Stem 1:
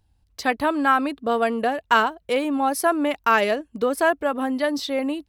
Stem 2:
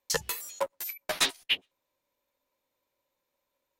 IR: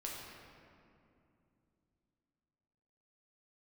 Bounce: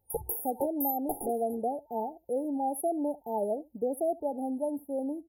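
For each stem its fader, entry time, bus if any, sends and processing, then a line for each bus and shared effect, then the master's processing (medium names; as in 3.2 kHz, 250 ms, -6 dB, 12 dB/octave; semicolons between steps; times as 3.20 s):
-8.0 dB, 0.00 s, no send, echo send -21.5 dB, bass shelf 61 Hz -10 dB
+2.0 dB, 0.00 s, no send, no echo send, comb 2.5 ms, depth 75%; peak limiter -19 dBFS, peak gain reduction 10 dB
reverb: none
echo: delay 72 ms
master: FFT band-reject 900–9600 Hz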